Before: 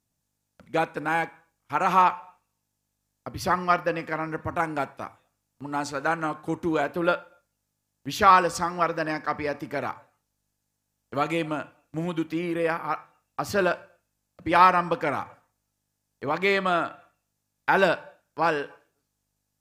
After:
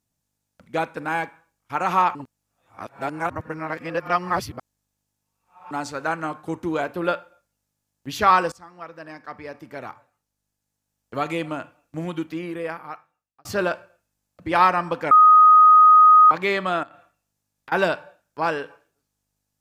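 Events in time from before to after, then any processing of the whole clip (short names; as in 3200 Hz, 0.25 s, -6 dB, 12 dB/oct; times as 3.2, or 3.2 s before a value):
2.15–5.71 reverse
8.52–11.19 fade in linear, from -21 dB
12.15–13.45 fade out
15.11–16.31 bleep 1250 Hz -8 dBFS
16.83–17.72 compressor, threshold -41 dBFS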